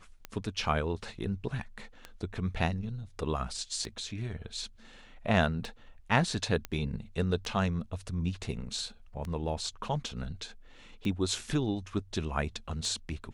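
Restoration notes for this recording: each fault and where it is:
scratch tick 33 1/3 rpm −23 dBFS
0:06.65: click −19 dBFS

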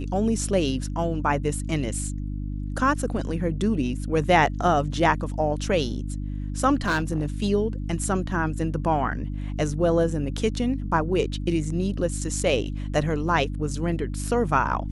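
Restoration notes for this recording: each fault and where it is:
mains hum 50 Hz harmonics 6 −30 dBFS
0:06.82–0:07.26: clipping −19 dBFS

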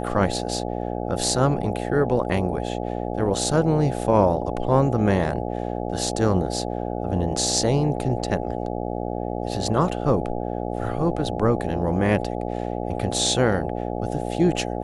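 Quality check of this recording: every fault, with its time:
mains buzz 60 Hz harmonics 14 −28 dBFS

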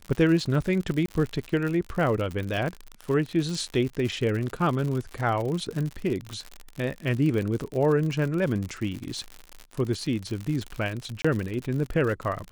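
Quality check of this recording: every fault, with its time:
surface crackle 84 per second −30 dBFS
0:01.06–0:01.08: drop-out 23 ms
0:11.22–0:11.24: drop-out 25 ms

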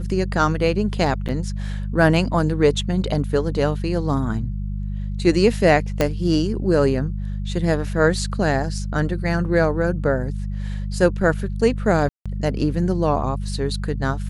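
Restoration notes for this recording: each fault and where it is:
mains hum 50 Hz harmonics 4 −26 dBFS
0:01.28–0:01.29: drop-out 7.2 ms
0:06.01: click −5 dBFS
0:12.09–0:12.26: drop-out 166 ms

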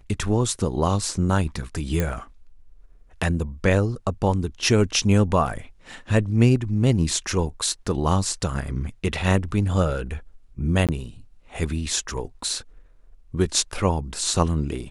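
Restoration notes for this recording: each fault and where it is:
0:02.00: click −10 dBFS
0:10.87–0:10.89: drop-out 17 ms

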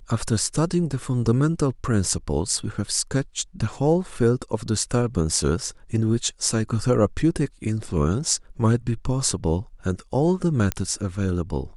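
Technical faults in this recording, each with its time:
0:10.72: click −8 dBFS

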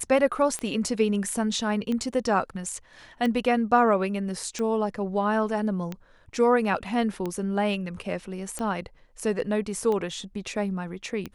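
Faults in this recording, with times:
scratch tick 45 rpm −18 dBFS

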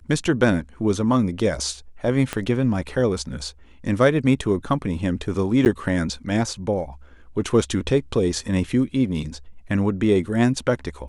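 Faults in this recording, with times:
0:02.33: click −10 dBFS
0:05.65–0:05.66: drop-out 9.6 ms

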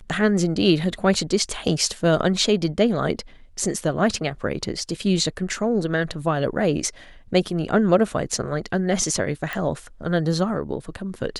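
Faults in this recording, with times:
0:09.53: click

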